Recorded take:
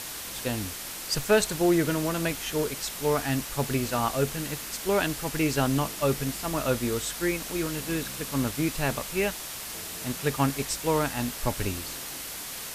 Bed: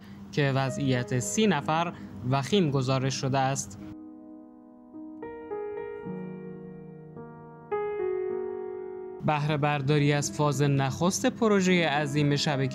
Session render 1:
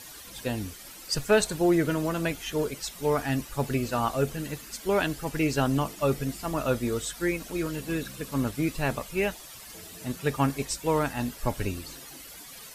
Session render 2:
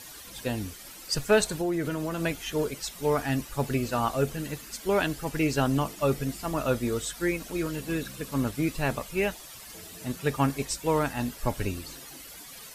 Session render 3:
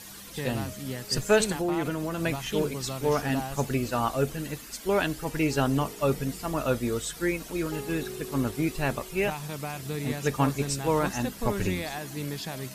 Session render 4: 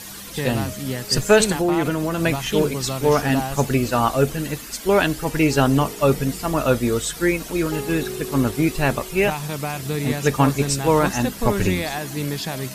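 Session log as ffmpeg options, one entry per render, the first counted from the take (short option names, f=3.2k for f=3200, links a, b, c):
-af "afftdn=nr=12:nf=-38"
-filter_complex "[0:a]asettb=1/sr,asplit=3[a][b][c];[a]atrim=end=1.514[d];[b]atrim=start=1.51:end=2.21,asetpts=PTS-STARTPTS,afade=t=in:d=0.004:c=qsin,afade=t=out:st=0.696:d=0.004:c=qsin,acompressor=threshold=-26dB:ratio=3:attack=3.2:release=140:knee=1:detection=peak[e];[c]atrim=start=2.206[f];[d][e]acrossfade=d=0.004:c1=hsin:c2=qsin[g];[g][f]acrossfade=d=0.004:c1=qsin:c2=hsin"
-filter_complex "[1:a]volume=-9.5dB[a];[0:a][a]amix=inputs=2:normalize=0"
-af "volume=8dB,alimiter=limit=-3dB:level=0:latency=1"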